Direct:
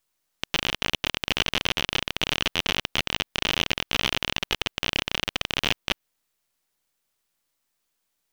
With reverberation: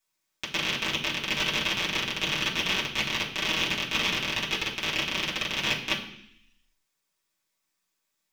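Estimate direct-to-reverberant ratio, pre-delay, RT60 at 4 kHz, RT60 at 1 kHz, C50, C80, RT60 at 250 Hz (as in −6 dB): −7.0 dB, 3 ms, 0.85 s, 0.65 s, 8.0 dB, 11.0 dB, 0.95 s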